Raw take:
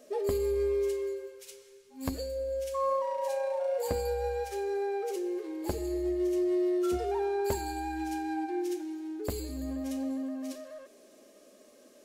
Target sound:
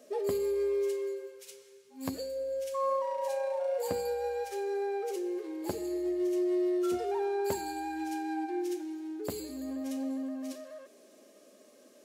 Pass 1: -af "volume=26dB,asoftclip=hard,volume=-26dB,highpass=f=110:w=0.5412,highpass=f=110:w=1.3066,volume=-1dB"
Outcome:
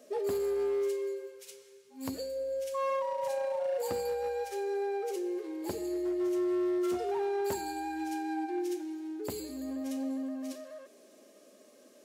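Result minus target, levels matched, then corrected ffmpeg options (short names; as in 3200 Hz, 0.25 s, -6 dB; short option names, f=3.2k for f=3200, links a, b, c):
overloaded stage: distortion +24 dB
-af "volume=19dB,asoftclip=hard,volume=-19dB,highpass=f=110:w=0.5412,highpass=f=110:w=1.3066,volume=-1dB"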